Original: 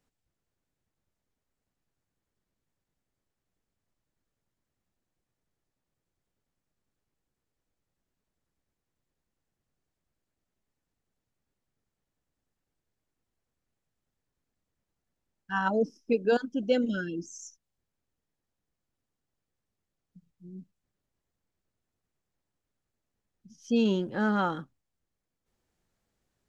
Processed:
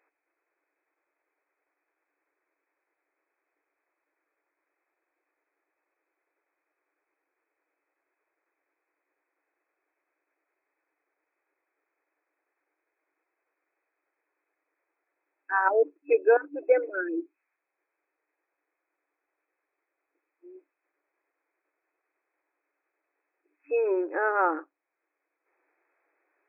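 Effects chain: FFT band-pass 290–2600 Hz; mismatched tape noise reduction encoder only; gain +5 dB

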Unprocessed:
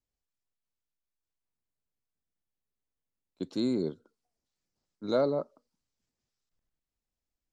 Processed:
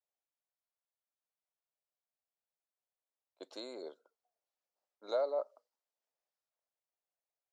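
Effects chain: compressor, threshold -28 dBFS, peak gain reduction 6.5 dB; ladder high-pass 520 Hz, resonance 45%; mismatched tape noise reduction decoder only; gain +5 dB

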